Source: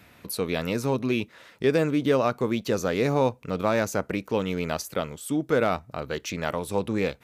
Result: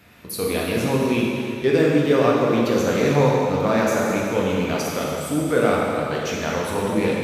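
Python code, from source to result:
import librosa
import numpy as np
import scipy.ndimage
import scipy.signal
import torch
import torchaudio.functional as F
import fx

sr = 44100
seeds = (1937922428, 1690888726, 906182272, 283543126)

y = fx.rev_plate(x, sr, seeds[0], rt60_s=2.6, hf_ratio=0.95, predelay_ms=0, drr_db=-4.5)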